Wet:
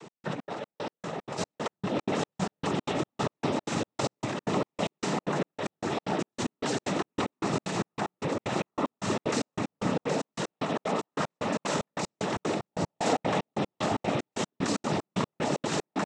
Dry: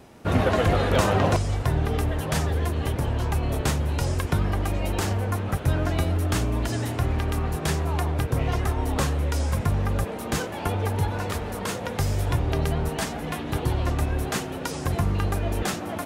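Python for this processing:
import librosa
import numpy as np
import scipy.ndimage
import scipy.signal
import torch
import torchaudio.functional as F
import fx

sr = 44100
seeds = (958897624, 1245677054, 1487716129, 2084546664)

p1 = scipy.signal.sosfilt(scipy.signal.butter(8, 150.0, 'highpass', fs=sr, output='sos'), x)
p2 = fx.notch(p1, sr, hz=1600.0, q=9.0)
p3 = p2 + fx.echo_single(p2, sr, ms=91, db=-13.0, dry=0)
p4 = fx.over_compress(p3, sr, threshold_db=-31.0, ratio=-1.0)
p5 = fx.peak_eq(p4, sr, hz=620.0, db=10.5, octaves=0.49, at=(12.67, 13.57))
p6 = p5 + 10.0 ** (-7.5 / 20.0) * np.pad(p5, (int(771 * sr / 1000.0), 0))[:len(p5)]
p7 = fx.noise_vocoder(p6, sr, seeds[0], bands=12)
p8 = fx.step_gate(p7, sr, bpm=188, pattern='x..xx.xx..', floor_db=-60.0, edge_ms=4.5)
y = p8 * librosa.db_to_amplitude(2.5)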